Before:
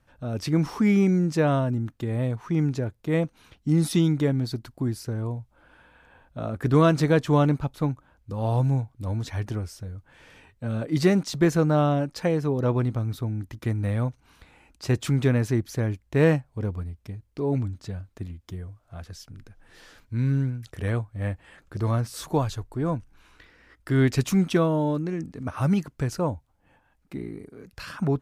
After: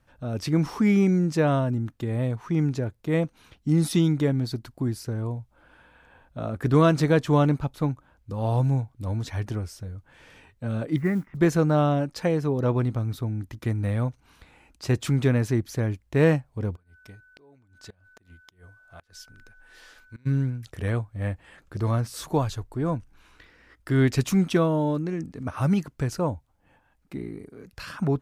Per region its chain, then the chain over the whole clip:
10.96–11.37 s: elliptic low-pass 2.1 kHz, stop band 50 dB + peaking EQ 590 Hz -11.5 dB 1.7 oct + modulation noise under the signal 34 dB
16.75–20.25 s: peaking EQ 120 Hz -12 dB 3 oct + whistle 1.5 kHz -54 dBFS + inverted gate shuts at -32 dBFS, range -24 dB
whole clip: none

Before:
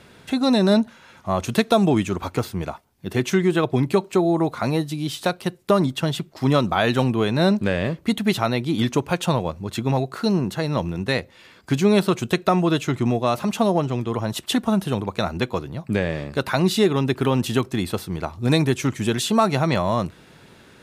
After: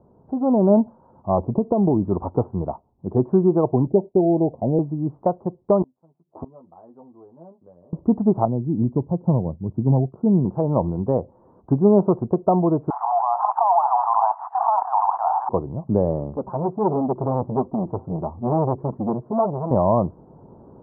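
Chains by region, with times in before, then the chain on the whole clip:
1.38–2.04 s: low-pass 1 kHz 24 dB/octave + compression, threshold -17 dBFS + dynamic bell 700 Hz, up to -6 dB, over -37 dBFS
3.87–4.79 s: steep low-pass 710 Hz + expander -39 dBFS
5.82–7.93 s: high-pass 290 Hz 6 dB/octave + inverted gate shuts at -23 dBFS, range -32 dB + doubling 12 ms -3 dB
8.45–10.45 s: expander -32 dBFS + band-pass filter 140 Hz, Q 0.77
12.90–15.49 s: jump at every zero crossing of -32 dBFS + steep high-pass 730 Hz 96 dB/octave + level flattener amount 100%
16.36–19.71 s: low-pass 1.5 kHz + flange 1.5 Hz, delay 3.6 ms, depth 4.4 ms, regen -14% + transformer saturation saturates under 1.4 kHz
whole clip: steep low-pass 1 kHz 48 dB/octave; dynamic bell 700 Hz, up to +3 dB, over -29 dBFS, Q 0.75; level rider; trim -4.5 dB

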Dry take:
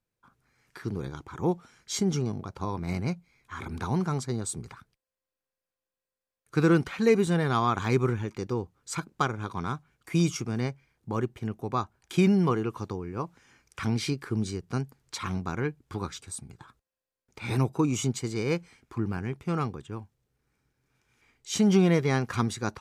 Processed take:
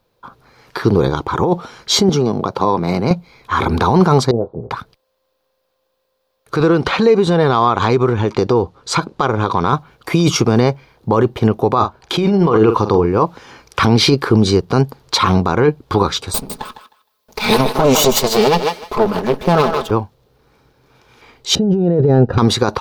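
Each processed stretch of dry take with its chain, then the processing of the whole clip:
2.09–3.11 s: Chebyshev high-pass 160 Hz + compression 2:1, threshold -37 dBFS
4.31–4.71 s: four-pole ladder low-pass 690 Hz, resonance 55% + doubling 25 ms -10 dB
6.60–9.73 s: low-pass 9.2 kHz + compression 8:1, threshold -31 dBFS
11.74–13.06 s: treble shelf 8.4 kHz -7.5 dB + doubling 46 ms -12 dB
16.34–19.91 s: comb filter that takes the minimum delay 4.7 ms + treble shelf 5.8 kHz +10 dB + thinning echo 155 ms, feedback 19%, high-pass 460 Hz, level -10 dB
21.55–22.38 s: boxcar filter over 40 samples + bass shelf 61 Hz +10 dB
whole clip: ten-band graphic EQ 500 Hz +8 dB, 1 kHz +7 dB, 2 kHz -4 dB, 4 kHz +8 dB, 8 kHz -9 dB; compressor with a negative ratio -25 dBFS, ratio -1; loudness maximiser +17 dB; trim -1 dB

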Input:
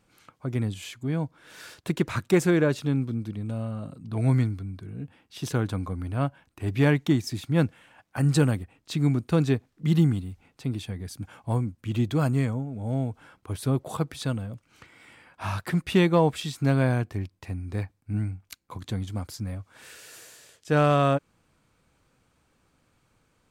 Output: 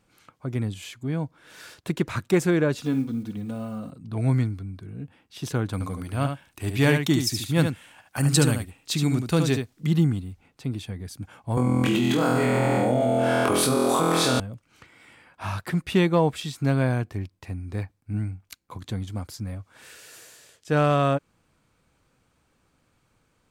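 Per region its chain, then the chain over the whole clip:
2.74–3.91 s: block-companded coder 7-bit + comb 4.1 ms, depth 53% + flutter echo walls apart 10.2 m, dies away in 0.29 s
5.73–9.87 s: treble shelf 2.9 kHz +12 dB + delay 73 ms -6.5 dB
11.57–14.40 s: high-pass 270 Hz + flutter echo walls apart 4.1 m, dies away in 1.2 s + level flattener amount 100%
whole clip: none

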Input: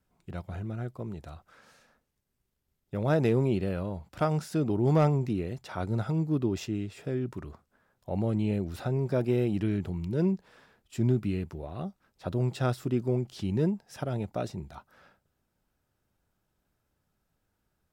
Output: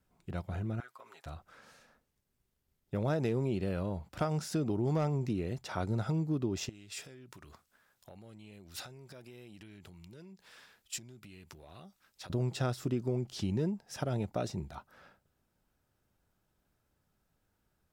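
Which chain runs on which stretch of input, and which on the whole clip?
0.80–1.26 s: resonant high-pass 1.2 kHz, resonance Q 1.5 + comb 7.4 ms, depth 91% + compression 4:1, threshold -48 dBFS
6.69–12.30 s: compression 10:1, threshold -41 dBFS + tilt shelf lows -8.5 dB, about 1.4 kHz
whole clip: dynamic bell 6 kHz, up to +5 dB, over -59 dBFS, Q 1.3; compression 4:1, threshold -29 dBFS

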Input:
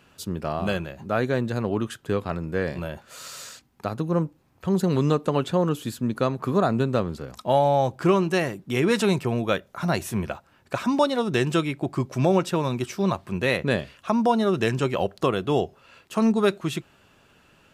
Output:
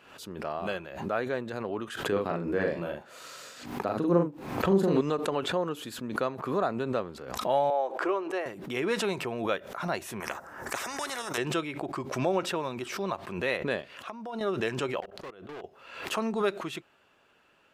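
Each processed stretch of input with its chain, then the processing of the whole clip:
2.12–5.01 s: peaking EQ 240 Hz +7.5 dB 2.5 oct + doubling 41 ms -2.5 dB
7.70–8.46 s: high-pass 340 Hz 24 dB/octave + treble shelf 2.3 kHz -11 dB
10.20–11.38 s: high-order bell 3.2 kHz -14 dB 1.2 oct + spectrum-flattening compressor 4:1
13.82–14.41 s: high-pass 100 Hz + gate -45 dBFS, range -9 dB + compression, threshold -30 dBFS
15.00–15.64 s: treble shelf 3.2 kHz -7 dB + level held to a coarse grid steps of 23 dB + overload inside the chain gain 32 dB
whole clip: tone controls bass -13 dB, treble -7 dB; swell ahead of each attack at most 69 dB/s; trim -5 dB

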